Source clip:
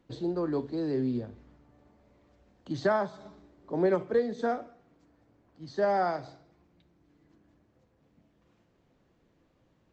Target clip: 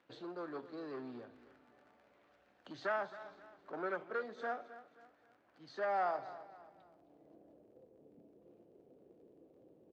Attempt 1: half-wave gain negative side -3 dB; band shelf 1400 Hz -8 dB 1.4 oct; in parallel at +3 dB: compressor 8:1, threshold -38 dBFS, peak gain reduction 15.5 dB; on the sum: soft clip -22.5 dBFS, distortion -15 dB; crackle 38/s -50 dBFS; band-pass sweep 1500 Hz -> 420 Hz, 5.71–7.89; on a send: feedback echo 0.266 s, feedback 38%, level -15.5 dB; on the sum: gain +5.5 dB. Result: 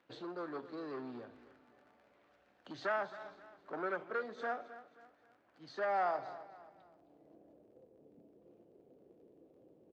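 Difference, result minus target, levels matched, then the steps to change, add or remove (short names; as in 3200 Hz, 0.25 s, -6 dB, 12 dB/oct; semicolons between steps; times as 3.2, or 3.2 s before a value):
compressor: peak gain reduction -8 dB
change: compressor 8:1, threshold -47 dBFS, peak gain reduction 23.5 dB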